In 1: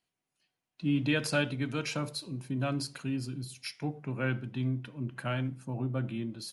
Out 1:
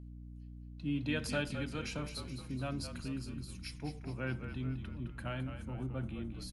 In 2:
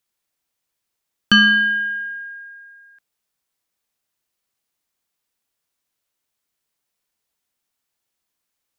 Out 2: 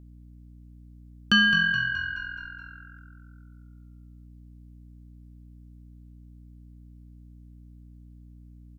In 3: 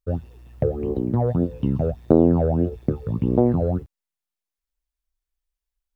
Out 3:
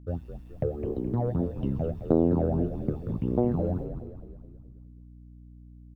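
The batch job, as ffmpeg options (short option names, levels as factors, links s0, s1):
-filter_complex "[0:a]asplit=7[s0][s1][s2][s3][s4][s5][s6];[s1]adelay=212,afreqshift=-43,volume=0.355[s7];[s2]adelay=424,afreqshift=-86,volume=0.188[s8];[s3]adelay=636,afreqshift=-129,volume=0.1[s9];[s4]adelay=848,afreqshift=-172,volume=0.0531[s10];[s5]adelay=1060,afreqshift=-215,volume=0.0279[s11];[s6]adelay=1272,afreqshift=-258,volume=0.0148[s12];[s0][s7][s8][s9][s10][s11][s12]amix=inputs=7:normalize=0,aeval=exprs='val(0)+0.01*(sin(2*PI*60*n/s)+sin(2*PI*2*60*n/s)/2+sin(2*PI*3*60*n/s)/3+sin(2*PI*4*60*n/s)/4+sin(2*PI*5*60*n/s)/5)':c=same,volume=0.447"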